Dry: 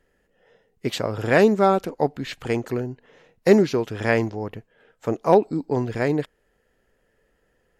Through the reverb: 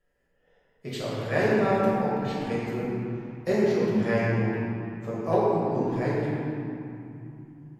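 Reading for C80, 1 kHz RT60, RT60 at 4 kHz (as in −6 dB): −2.0 dB, 2.9 s, 1.6 s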